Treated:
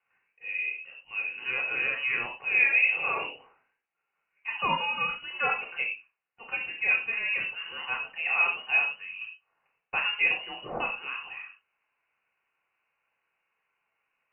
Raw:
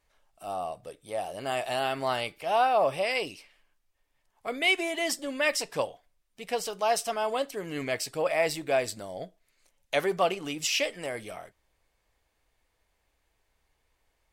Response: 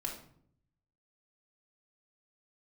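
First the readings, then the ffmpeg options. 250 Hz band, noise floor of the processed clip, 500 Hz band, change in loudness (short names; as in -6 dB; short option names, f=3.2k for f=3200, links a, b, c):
-12.0 dB, -82 dBFS, -15.0 dB, +2.0 dB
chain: -filter_complex "[0:a]highpass=470[a];[1:a]atrim=start_sample=2205,afade=t=out:st=0.17:d=0.01,atrim=end_sample=7938[b];[a][b]afir=irnorm=-1:irlink=0,lowpass=f=2.7k:t=q:w=0.5098,lowpass=f=2.7k:t=q:w=0.6013,lowpass=f=2.7k:t=q:w=0.9,lowpass=f=2.7k:t=q:w=2.563,afreqshift=-3200"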